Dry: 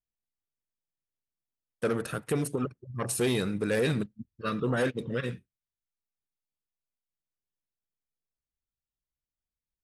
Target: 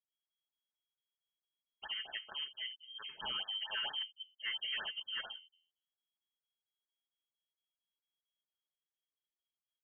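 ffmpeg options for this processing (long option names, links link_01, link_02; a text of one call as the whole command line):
ffmpeg -i in.wav -filter_complex "[0:a]aecho=1:1:4.5:0.36,bandreject=frequency=83.89:width_type=h:width=4,bandreject=frequency=167.78:width_type=h:width=4,bandreject=frequency=251.67:width_type=h:width=4,bandreject=frequency=335.56:width_type=h:width=4,bandreject=frequency=419.45:width_type=h:width=4,bandreject=frequency=503.34:width_type=h:width=4,bandreject=frequency=587.23:width_type=h:width=4,bandreject=frequency=671.12:width_type=h:width=4,bandreject=frequency=755.01:width_type=h:width=4,bandreject=frequency=838.9:width_type=h:width=4,bandreject=frequency=922.79:width_type=h:width=4,bandreject=frequency=1006.68:width_type=h:width=4,bandreject=frequency=1090.57:width_type=h:width=4,bandreject=frequency=1174.46:width_type=h:width=4,bandreject=frequency=1258.35:width_type=h:width=4,acrossover=split=160|800[link_01][link_02][link_03];[link_02]alimiter=level_in=6dB:limit=-24dB:level=0:latency=1:release=447,volume=-6dB[link_04];[link_01][link_04][link_03]amix=inputs=3:normalize=0,lowpass=frequency=2800:width_type=q:width=0.5098,lowpass=frequency=2800:width_type=q:width=0.6013,lowpass=frequency=2800:width_type=q:width=0.9,lowpass=frequency=2800:width_type=q:width=2.563,afreqshift=-3300,afftfilt=real='re*(1-between(b*sr/1024,590*pow(2600/590,0.5+0.5*sin(2*PI*4.4*pts/sr))/1.41,590*pow(2600/590,0.5+0.5*sin(2*PI*4.4*pts/sr))*1.41))':imag='im*(1-between(b*sr/1024,590*pow(2600/590,0.5+0.5*sin(2*PI*4.4*pts/sr))/1.41,590*pow(2600/590,0.5+0.5*sin(2*PI*4.4*pts/sr))*1.41))':win_size=1024:overlap=0.75,volume=-6dB" out.wav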